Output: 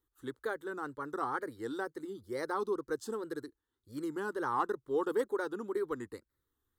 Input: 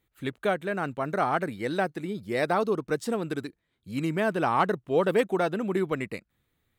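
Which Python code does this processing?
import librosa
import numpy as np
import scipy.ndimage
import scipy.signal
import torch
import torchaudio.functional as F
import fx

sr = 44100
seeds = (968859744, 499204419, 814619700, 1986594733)

y = fx.fixed_phaser(x, sr, hz=660.0, stages=6)
y = fx.wow_flutter(y, sr, seeds[0], rate_hz=2.1, depth_cents=120.0)
y = y * 10.0 ** (-6.0 / 20.0)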